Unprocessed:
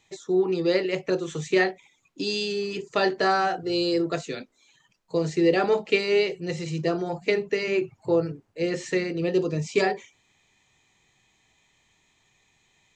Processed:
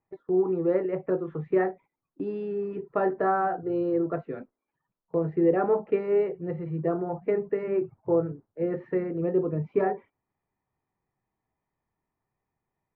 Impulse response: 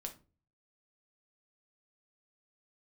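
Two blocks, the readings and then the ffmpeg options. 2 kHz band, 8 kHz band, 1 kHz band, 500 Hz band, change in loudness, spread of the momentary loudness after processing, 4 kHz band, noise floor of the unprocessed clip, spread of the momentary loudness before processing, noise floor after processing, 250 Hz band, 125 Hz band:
-11.5 dB, under -35 dB, -2.0 dB, -1.5 dB, -2.5 dB, 8 LU, under -30 dB, -67 dBFS, 8 LU, under -85 dBFS, -1.5 dB, -1.5 dB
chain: -af "lowpass=f=1.4k:w=0.5412,lowpass=f=1.4k:w=1.3066,agate=range=-11dB:threshold=-45dB:ratio=16:detection=peak,volume=-1.5dB"

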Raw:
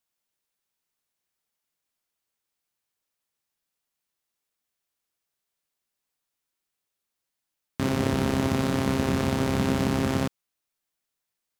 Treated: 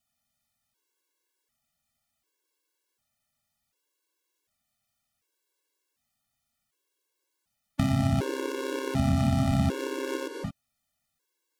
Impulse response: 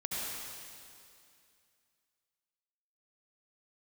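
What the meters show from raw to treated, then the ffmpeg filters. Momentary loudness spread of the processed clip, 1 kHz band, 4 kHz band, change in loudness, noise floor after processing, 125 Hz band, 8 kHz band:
12 LU, -3.5 dB, -4.5 dB, -2.5 dB, -81 dBFS, +1.0 dB, -4.5 dB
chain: -filter_complex "[0:a]asplit=2[a][b];[b]lowshelf=f=460:g=10.5[c];[1:a]atrim=start_sample=2205,atrim=end_sample=6174,asetrate=26460,aresample=44100[d];[c][d]afir=irnorm=-1:irlink=0,volume=-10.5dB[e];[a][e]amix=inputs=2:normalize=0,acompressor=threshold=-24dB:ratio=5,afftfilt=real='re*gt(sin(2*PI*0.67*pts/sr)*(1-2*mod(floor(b*sr/1024/290),2)),0)':imag='im*gt(sin(2*PI*0.67*pts/sr)*(1-2*mod(floor(b*sr/1024/290),2)),0)':win_size=1024:overlap=0.75,volume=4dB"

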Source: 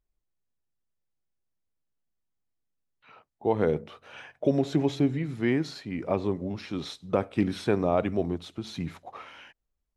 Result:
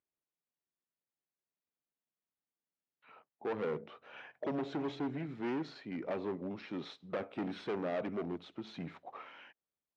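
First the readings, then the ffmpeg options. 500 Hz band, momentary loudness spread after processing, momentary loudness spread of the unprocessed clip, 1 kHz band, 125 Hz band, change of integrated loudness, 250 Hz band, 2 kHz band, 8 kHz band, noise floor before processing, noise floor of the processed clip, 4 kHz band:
-10.5 dB, 14 LU, 18 LU, -9.0 dB, -15.5 dB, -11.0 dB, -11.0 dB, -8.0 dB, n/a, -80 dBFS, under -85 dBFS, -10.0 dB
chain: -af "asoftclip=type=hard:threshold=-26.5dB,highpass=200,lowpass=3k,volume=-5dB"

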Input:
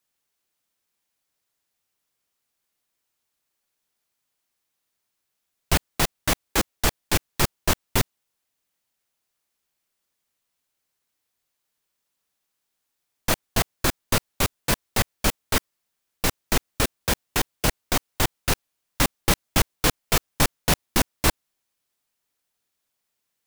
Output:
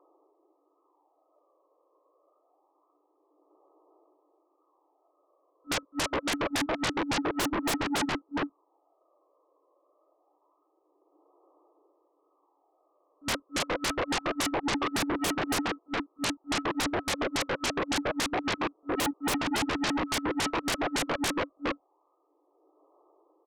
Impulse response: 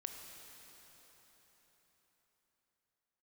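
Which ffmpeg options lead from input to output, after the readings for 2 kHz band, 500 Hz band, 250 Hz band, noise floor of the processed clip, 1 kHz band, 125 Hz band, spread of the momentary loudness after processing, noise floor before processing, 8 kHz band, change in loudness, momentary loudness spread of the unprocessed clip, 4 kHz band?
-3.0 dB, -2.0 dB, 0.0 dB, -72 dBFS, -2.0 dB, -13.0 dB, 5 LU, -79 dBFS, -8.0 dB, -5.5 dB, 5 LU, -4.5 dB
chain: -filter_complex "[0:a]afftfilt=real='re*between(b*sr/4096,280,1300)':imag='im*between(b*sr/4096,280,1300)':win_size=4096:overlap=0.75,tiltshelf=f=690:g=7,acrossover=split=590|990[a][b][c];[a]alimiter=level_in=0.5dB:limit=-24dB:level=0:latency=1:release=46,volume=-0.5dB[d];[b]acompressor=threshold=-49dB:ratio=8[e];[d][e][c]amix=inputs=3:normalize=0,aphaser=in_gain=1:out_gain=1:delay=1.9:decay=0.55:speed=0.26:type=sinusoidal,asoftclip=type=tanh:threshold=-25dB,asplit=2[f][g];[g]adelay=414,volume=-10dB,highshelf=f=4k:g=-9.32[h];[f][h]amix=inputs=2:normalize=0,aeval=exprs='0.0562*sin(PI/2*7.08*val(0)/0.0562)':c=same"

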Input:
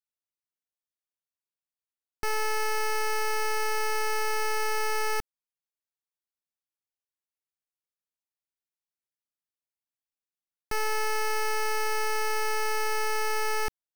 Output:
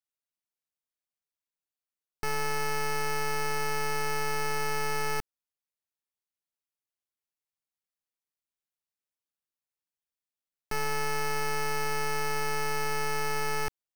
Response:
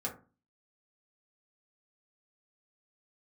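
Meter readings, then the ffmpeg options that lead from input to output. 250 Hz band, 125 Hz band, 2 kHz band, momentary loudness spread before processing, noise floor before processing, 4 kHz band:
+12.5 dB, +11.5 dB, -2.0 dB, 2 LU, under -85 dBFS, -2.0 dB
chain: -af "tremolo=f=150:d=0.462"

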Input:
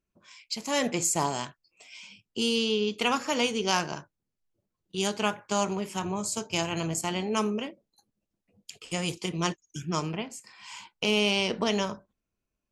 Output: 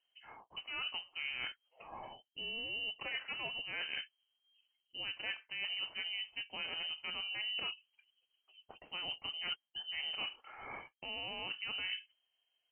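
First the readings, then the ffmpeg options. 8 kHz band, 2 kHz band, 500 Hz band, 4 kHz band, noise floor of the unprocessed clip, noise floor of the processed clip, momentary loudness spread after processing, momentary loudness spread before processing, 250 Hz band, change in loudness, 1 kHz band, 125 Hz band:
under -40 dB, -6.0 dB, -24.5 dB, -5.5 dB, -85 dBFS, -85 dBFS, 12 LU, 16 LU, -29.0 dB, -11.0 dB, -18.5 dB, -27.5 dB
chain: -af "areverse,acompressor=threshold=-39dB:ratio=16,areverse,lowpass=f=2.7k:t=q:w=0.5098,lowpass=f=2.7k:t=q:w=0.6013,lowpass=f=2.7k:t=q:w=0.9,lowpass=f=2.7k:t=q:w=2.563,afreqshift=-3200,volume=2.5dB"

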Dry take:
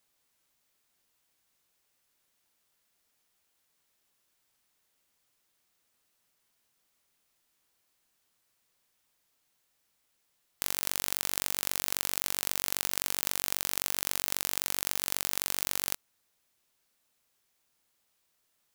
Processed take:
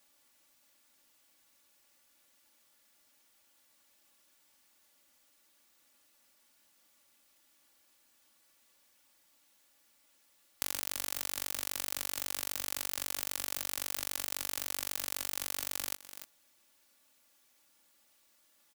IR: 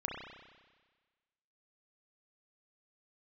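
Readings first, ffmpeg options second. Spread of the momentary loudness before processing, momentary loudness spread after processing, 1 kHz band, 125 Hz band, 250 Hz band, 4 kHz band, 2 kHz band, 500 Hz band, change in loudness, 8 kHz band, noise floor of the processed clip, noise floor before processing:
1 LU, 2 LU, -5.0 dB, -12.0 dB, -5.0 dB, -4.5 dB, -5.0 dB, -5.0 dB, -5.0 dB, -5.0 dB, -69 dBFS, -76 dBFS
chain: -af "lowshelf=f=63:g=-9.5,aecho=1:1:3.5:0.77,aecho=1:1:293:0.0841,acompressor=threshold=-34dB:ratio=5,volume=4.5dB"

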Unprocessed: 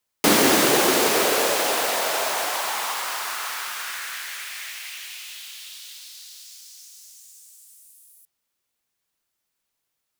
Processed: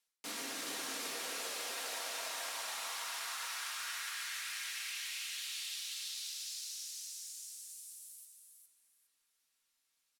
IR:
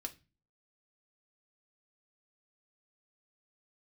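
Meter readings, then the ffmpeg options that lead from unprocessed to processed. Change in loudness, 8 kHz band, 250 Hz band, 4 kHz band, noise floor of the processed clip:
-18.0 dB, -13.5 dB, under -25 dB, -13.0 dB, -81 dBFS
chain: -filter_complex "[0:a]lowpass=12k,tiltshelf=f=970:g=-7,alimiter=limit=-10.5dB:level=0:latency=1,areverse,acompressor=threshold=-33dB:ratio=12,areverse,aecho=1:1:409|818|1227:0.501|0.115|0.0265[a];[1:a]atrim=start_sample=2205[b];[a][b]afir=irnorm=-1:irlink=0,volume=-3.5dB"

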